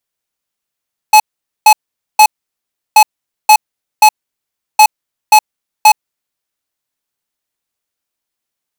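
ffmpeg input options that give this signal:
-f lavfi -i "aevalsrc='0.668*(2*lt(mod(856*t,1),0.5)-1)*clip(min(mod(mod(t,1.83),0.53),0.07-mod(mod(t,1.83),0.53))/0.005,0,1)*lt(mod(t,1.83),1.59)':d=5.49:s=44100"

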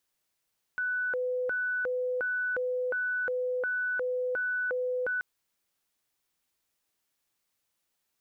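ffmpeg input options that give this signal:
-f lavfi -i "aevalsrc='0.0422*sin(2*PI*(996*t+494/1.4*(0.5-abs(mod(1.4*t,1)-0.5))))':d=4.43:s=44100"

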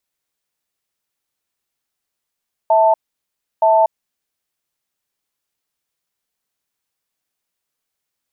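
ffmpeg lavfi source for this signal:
-f lavfi -i "aevalsrc='0.251*(sin(2*PI*652*t)+sin(2*PI*886*t))*clip(min(mod(t,0.92),0.24-mod(t,0.92))/0.005,0,1)':d=1.84:s=44100"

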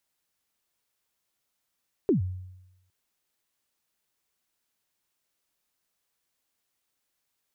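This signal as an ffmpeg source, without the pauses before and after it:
-f lavfi -i "aevalsrc='0.141*pow(10,-3*t/0.93)*sin(2*PI*(440*0.121/log(92/440)*(exp(log(92/440)*min(t,0.121)/0.121)-1)+92*max(t-0.121,0)))':d=0.81:s=44100"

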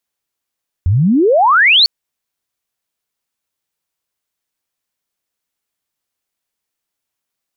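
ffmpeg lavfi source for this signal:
-f lavfi -i "aevalsrc='pow(10,(-9+3.5*t/1)/20)*sin(2*PI*82*1/log(4600/82)*(exp(log(4600/82)*t/1)-1))':d=1:s=44100"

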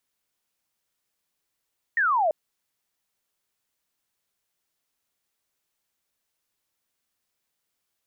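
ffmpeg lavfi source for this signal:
-f lavfi -i "aevalsrc='0.112*clip(t/0.002,0,1)*clip((0.34-t)/0.002,0,1)*sin(2*PI*1900*0.34/log(590/1900)*(exp(log(590/1900)*t/0.34)-1))':d=0.34:s=44100"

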